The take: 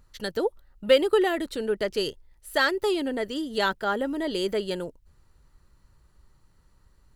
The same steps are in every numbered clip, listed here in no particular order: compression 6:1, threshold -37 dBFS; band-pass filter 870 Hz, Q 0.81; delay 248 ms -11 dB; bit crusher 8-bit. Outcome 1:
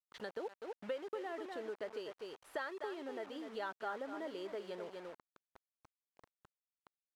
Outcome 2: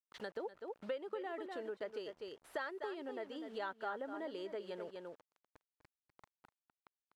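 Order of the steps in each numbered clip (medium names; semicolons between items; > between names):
delay > compression > bit crusher > band-pass filter; bit crusher > delay > compression > band-pass filter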